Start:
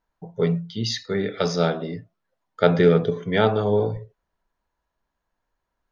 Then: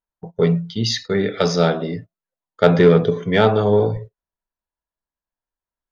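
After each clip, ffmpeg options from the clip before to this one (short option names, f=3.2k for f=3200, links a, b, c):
-filter_complex "[0:a]agate=range=-20dB:threshold=-38dB:ratio=16:detection=peak,asplit=2[a][b];[b]acontrast=67,volume=2dB[c];[a][c]amix=inputs=2:normalize=0,volume=-6dB"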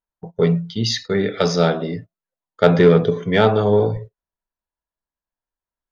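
-af anull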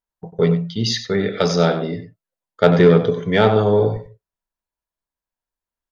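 -filter_complex "[0:a]asplit=2[a][b];[b]adelay=93.29,volume=-11dB,highshelf=f=4k:g=-2.1[c];[a][c]amix=inputs=2:normalize=0"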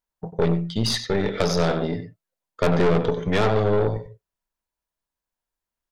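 -af "aeval=exprs='(tanh(5.62*val(0)+0.7)-tanh(0.7))/5.62':c=same,acompressor=threshold=-31dB:ratio=1.5,volume=5.5dB"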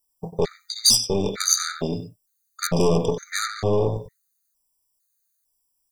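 -af "aexciter=amount=9:drive=4.3:freq=4.4k,afftfilt=real='re*gt(sin(2*PI*1.1*pts/sr)*(1-2*mod(floor(b*sr/1024/1200),2)),0)':imag='im*gt(sin(2*PI*1.1*pts/sr)*(1-2*mod(floor(b*sr/1024/1200),2)),0)':win_size=1024:overlap=0.75"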